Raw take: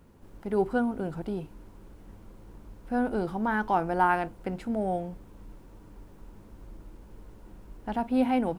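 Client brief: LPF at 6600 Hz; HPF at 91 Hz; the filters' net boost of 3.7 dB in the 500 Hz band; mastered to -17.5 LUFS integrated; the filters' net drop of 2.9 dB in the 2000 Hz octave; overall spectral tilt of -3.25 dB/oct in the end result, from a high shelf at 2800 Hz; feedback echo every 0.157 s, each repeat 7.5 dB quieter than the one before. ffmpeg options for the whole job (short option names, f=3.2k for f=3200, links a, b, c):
-af "highpass=91,lowpass=6.6k,equalizer=f=500:t=o:g=5,equalizer=f=2k:t=o:g=-3.5,highshelf=f=2.8k:g=-4,aecho=1:1:157|314|471|628|785:0.422|0.177|0.0744|0.0312|0.0131,volume=9.5dB"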